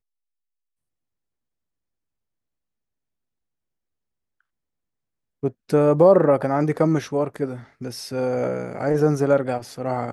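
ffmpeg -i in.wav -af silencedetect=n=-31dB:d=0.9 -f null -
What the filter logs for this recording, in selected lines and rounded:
silence_start: 0.00
silence_end: 5.43 | silence_duration: 5.43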